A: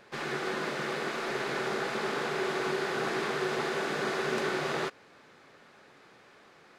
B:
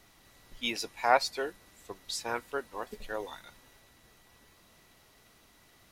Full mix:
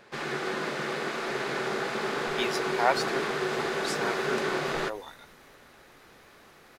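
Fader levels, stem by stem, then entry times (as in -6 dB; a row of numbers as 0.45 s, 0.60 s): +1.5 dB, -0.5 dB; 0.00 s, 1.75 s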